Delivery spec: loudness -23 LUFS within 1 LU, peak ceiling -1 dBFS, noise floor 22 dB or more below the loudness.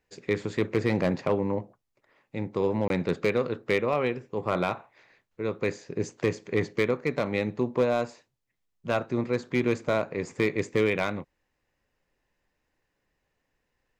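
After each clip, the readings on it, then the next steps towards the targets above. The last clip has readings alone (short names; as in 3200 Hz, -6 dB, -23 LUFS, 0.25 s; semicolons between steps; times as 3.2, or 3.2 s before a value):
clipped 0.3%; flat tops at -15.5 dBFS; dropouts 1; longest dropout 22 ms; loudness -28.5 LUFS; peak -15.5 dBFS; loudness target -23.0 LUFS
-> clip repair -15.5 dBFS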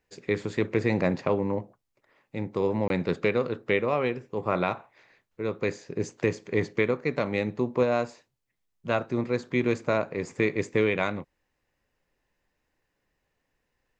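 clipped 0.0%; dropouts 1; longest dropout 22 ms
-> interpolate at 2.88, 22 ms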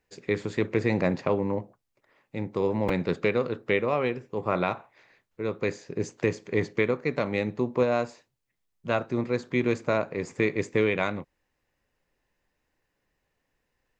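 dropouts 0; loudness -28.0 LUFS; peak -9.5 dBFS; loudness target -23.0 LUFS
-> gain +5 dB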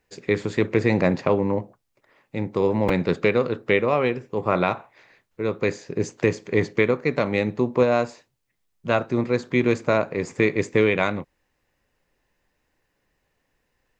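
loudness -23.0 LUFS; peak -4.5 dBFS; noise floor -74 dBFS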